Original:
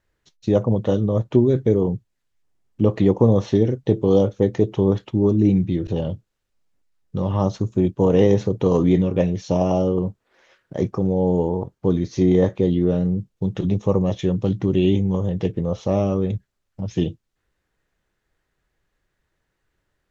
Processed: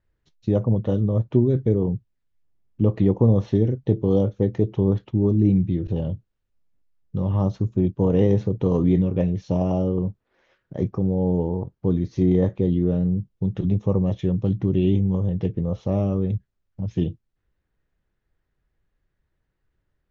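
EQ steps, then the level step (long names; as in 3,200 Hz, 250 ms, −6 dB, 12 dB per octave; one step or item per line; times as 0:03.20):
high-frequency loss of the air 98 metres
low-shelf EQ 250 Hz +9.5 dB
−7.0 dB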